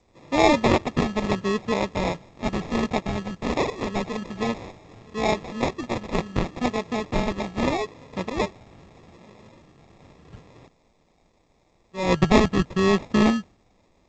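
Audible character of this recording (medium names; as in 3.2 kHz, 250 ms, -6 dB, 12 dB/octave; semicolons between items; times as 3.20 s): a quantiser's noise floor 12-bit, dither triangular; phasing stages 2, 0.78 Hz, lowest notch 520–1400 Hz; aliases and images of a low sample rate 1.5 kHz, jitter 0%; G.722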